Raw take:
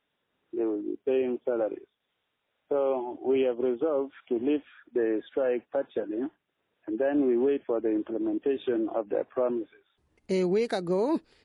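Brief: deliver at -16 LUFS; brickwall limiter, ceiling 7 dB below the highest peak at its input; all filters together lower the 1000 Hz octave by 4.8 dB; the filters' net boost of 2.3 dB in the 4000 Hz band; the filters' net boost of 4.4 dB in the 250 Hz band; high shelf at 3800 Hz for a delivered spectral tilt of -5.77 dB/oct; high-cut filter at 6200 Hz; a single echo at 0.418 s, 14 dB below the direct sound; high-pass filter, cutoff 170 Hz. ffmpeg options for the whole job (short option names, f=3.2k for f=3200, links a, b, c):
-af "highpass=170,lowpass=6.2k,equalizer=f=250:t=o:g=7.5,equalizer=f=1k:t=o:g=-7.5,highshelf=f=3.8k:g=-6.5,equalizer=f=4k:t=o:g=7.5,alimiter=limit=-19.5dB:level=0:latency=1,aecho=1:1:418:0.2,volume=13dB"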